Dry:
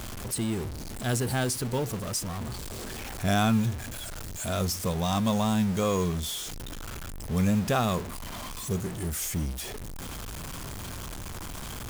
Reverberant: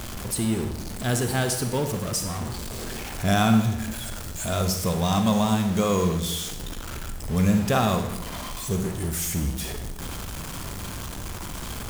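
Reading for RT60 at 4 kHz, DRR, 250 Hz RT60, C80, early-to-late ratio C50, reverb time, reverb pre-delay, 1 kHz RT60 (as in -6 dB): 0.75 s, 6.5 dB, 1.0 s, 10.0 dB, 7.5 dB, 0.90 s, 38 ms, 0.85 s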